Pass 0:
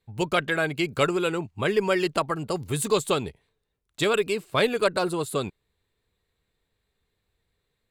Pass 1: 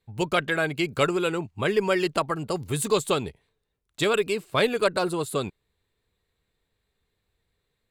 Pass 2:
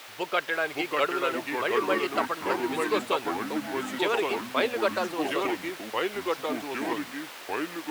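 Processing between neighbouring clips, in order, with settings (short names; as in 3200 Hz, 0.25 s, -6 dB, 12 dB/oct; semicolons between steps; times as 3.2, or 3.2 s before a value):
nothing audible
requantised 6-bit, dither triangular; three-band isolator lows -22 dB, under 360 Hz, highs -15 dB, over 4100 Hz; echoes that change speed 0.53 s, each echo -3 st, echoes 3; gain -2 dB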